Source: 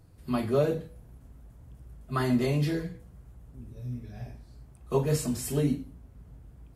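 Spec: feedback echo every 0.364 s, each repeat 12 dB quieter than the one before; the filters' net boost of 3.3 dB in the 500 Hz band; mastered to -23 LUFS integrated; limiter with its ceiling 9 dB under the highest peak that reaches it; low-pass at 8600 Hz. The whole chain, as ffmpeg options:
-af "lowpass=8.6k,equalizer=f=500:t=o:g=4,alimiter=limit=-19.5dB:level=0:latency=1,aecho=1:1:364|728|1092:0.251|0.0628|0.0157,volume=8.5dB"

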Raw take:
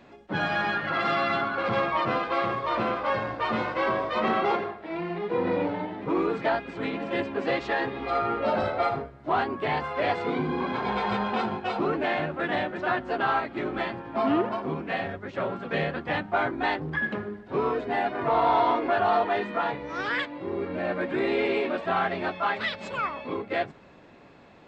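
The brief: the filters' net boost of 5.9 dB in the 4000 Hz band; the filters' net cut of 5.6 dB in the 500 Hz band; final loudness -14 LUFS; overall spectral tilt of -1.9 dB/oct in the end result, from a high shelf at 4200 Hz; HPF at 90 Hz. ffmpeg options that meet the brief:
-af "highpass=90,equalizer=f=500:t=o:g=-8,equalizer=f=4k:t=o:g=4,highshelf=f=4.2k:g=7.5,volume=14.5dB"

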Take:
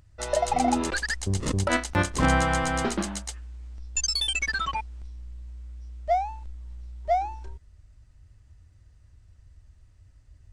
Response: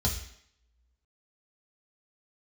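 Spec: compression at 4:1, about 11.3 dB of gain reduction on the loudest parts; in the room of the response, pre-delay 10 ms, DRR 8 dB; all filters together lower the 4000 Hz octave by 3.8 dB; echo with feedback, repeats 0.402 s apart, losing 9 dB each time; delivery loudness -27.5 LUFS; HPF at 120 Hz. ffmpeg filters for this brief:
-filter_complex "[0:a]highpass=120,equalizer=f=4k:t=o:g=-5,acompressor=threshold=-33dB:ratio=4,aecho=1:1:402|804|1206|1608:0.355|0.124|0.0435|0.0152,asplit=2[a][b];[1:a]atrim=start_sample=2205,adelay=10[c];[b][c]afir=irnorm=-1:irlink=0,volume=-14.5dB[d];[a][d]amix=inputs=2:normalize=0,volume=4.5dB"

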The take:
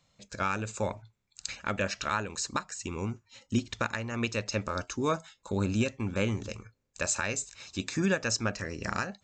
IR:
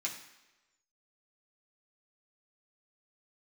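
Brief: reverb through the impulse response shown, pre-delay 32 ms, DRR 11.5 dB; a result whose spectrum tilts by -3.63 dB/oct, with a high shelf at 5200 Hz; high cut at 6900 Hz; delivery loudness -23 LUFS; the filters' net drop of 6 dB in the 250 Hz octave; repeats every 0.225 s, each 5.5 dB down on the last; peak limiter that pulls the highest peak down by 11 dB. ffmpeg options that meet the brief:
-filter_complex "[0:a]lowpass=6.9k,equalizer=f=250:t=o:g=-8,highshelf=f=5.2k:g=6,alimiter=level_in=2dB:limit=-24dB:level=0:latency=1,volume=-2dB,aecho=1:1:225|450|675|900|1125|1350|1575:0.531|0.281|0.149|0.079|0.0419|0.0222|0.0118,asplit=2[a][b];[1:a]atrim=start_sample=2205,adelay=32[c];[b][c]afir=irnorm=-1:irlink=0,volume=-13.5dB[d];[a][d]amix=inputs=2:normalize=0,volume=13.5dB"

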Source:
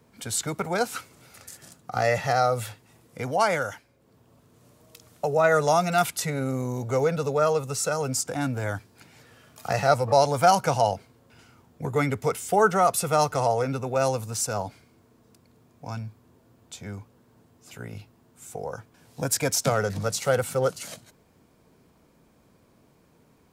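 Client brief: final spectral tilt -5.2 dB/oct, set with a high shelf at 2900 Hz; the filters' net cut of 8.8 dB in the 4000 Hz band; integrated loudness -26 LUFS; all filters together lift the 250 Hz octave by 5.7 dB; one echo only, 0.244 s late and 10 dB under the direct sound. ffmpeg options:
-af "equalizer=f=250:t=o:g=7.5,highshelf=f=2.9k:g=-3.5,equalizer=f=4k:t=o:g=-9,aecho=1:1:244:0.316,volume=-2dB"

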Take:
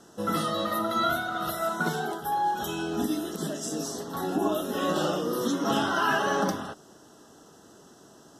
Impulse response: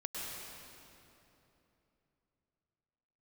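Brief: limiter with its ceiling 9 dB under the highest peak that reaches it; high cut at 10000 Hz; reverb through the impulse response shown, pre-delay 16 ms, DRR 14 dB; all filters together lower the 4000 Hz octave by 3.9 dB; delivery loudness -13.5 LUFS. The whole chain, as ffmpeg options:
-filter_complex "[0:a]lowpass=10k,equalizer=f=4k:t=o:g=-5,alimiter=limit=-22.5dB:level=0:latency=1,asplit=2[a][b];[1:a]atrim=start_sample=2205,adelay=16[c];[b][c]afir=irnorm=-1:irlink=0,volume=-15.5dB[d];[a][d]amix=inputs=2:normalize=0,volume=18dB"

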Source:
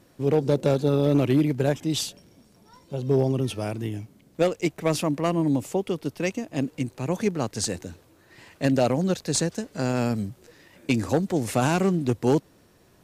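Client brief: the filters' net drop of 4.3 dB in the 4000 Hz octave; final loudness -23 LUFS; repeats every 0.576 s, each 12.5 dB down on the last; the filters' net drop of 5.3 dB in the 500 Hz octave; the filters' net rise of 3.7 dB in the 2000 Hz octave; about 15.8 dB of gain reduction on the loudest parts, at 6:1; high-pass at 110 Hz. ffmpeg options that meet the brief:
-af "highpass=110,equalizer=f=500:t=o:g=-7,equalizer=f=2k:t=o:g=7.5,equalizer=f=4k:t=o:g=-8,acompressor=threshold=-37dB:ratio=6,aecho=1:1:576|1152|1728:0.237|0.0569|0.0137,volume=18dB"

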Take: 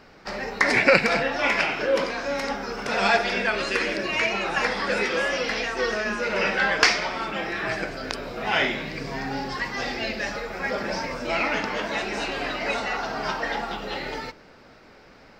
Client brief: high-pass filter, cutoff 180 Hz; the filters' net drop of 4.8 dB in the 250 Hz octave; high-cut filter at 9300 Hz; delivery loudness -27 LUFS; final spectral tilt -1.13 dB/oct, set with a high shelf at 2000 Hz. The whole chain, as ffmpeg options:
-af "highpass=180,lowpass=9.3k,equalizer=f=250:t=o:g=-4.5,highshelf=f=2k:g=-8.5,volume=1dB"

